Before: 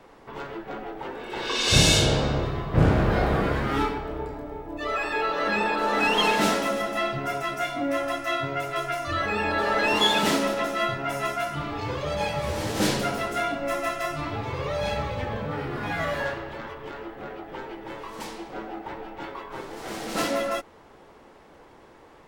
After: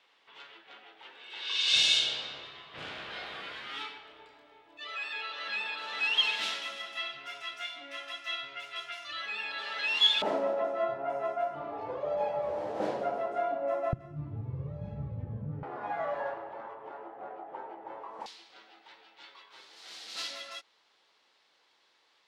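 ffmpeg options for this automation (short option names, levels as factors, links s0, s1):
-af "asetnsamples=n=441:p=0,asendcmd='10.22 bandpass f 650;13.93 bandpass f 130;15.63 bandpass f 770;18.26 bandpass f 4100',bandpass=f=3300:t=q:w=2.3:csg=0"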